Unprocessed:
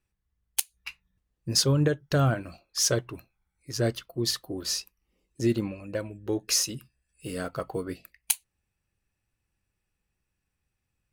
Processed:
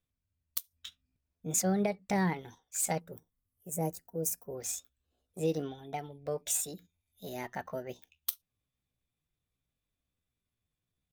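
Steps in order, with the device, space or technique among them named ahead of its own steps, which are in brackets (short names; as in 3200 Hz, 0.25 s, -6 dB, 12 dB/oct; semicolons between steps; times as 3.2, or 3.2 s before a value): chipmunk voice (pitch shift +5.5 st); 3–4.55 EQ curve 540 Hz 0 dB, 3900 Hz -17 dB, 9800 Hz +9 dB; gain -6.5 dB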